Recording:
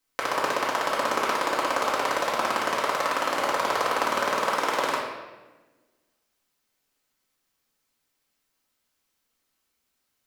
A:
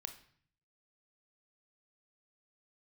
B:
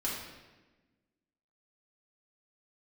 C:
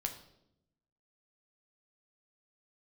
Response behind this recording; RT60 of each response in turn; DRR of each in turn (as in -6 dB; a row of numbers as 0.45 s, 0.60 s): B; 0.55 s, 1.2 s, 0.80 s; 7.0 dB, -7.0 dB, 3.5 dB